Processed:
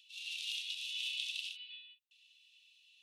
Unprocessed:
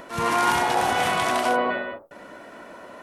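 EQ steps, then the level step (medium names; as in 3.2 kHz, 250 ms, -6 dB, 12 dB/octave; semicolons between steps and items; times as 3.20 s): rippled Chebyshev high-pass 2.6 kHz, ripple 6 dB; distance through air 260 m; treble shelf 5.8 kHz +11 dB; +1.5 dB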